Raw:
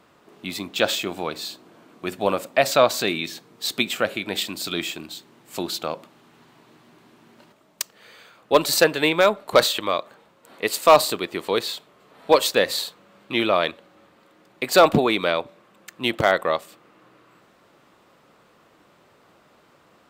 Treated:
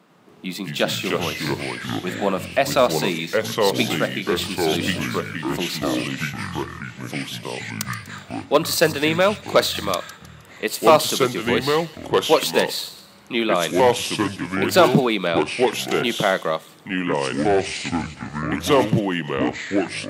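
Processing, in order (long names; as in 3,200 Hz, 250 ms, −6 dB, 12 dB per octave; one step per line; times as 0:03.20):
low shelf with overshoot 120 Hz −11.5 dB, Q 3
delay with a high-pass on its return 124 ms, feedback 39%, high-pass 3,600 Hz, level −11.5 dB
delay with pitch and tempo change per echo 98 ms, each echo −4 semitones, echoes 3
level −1 dB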